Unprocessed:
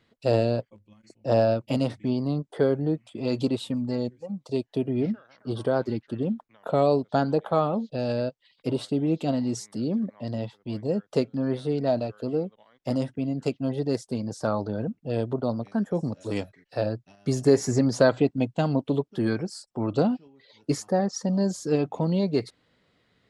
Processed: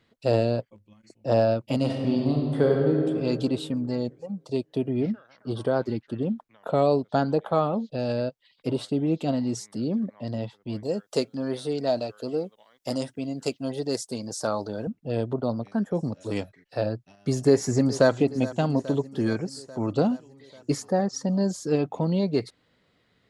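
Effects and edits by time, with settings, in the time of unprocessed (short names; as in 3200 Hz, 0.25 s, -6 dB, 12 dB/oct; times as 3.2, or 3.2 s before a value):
1.77–3.07 reverb throw, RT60 2.2 s, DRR -0.5 dB
10.83–14.87 tone controls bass -7 dB, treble +11 dB
17.35–18.1 echo throw 0.42 s, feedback 70%, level -16.5 dB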